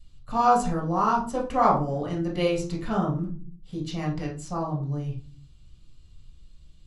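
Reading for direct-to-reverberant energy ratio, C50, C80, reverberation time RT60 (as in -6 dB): -4.0 dB, 8.0 dB, 13.5 dB, not exponential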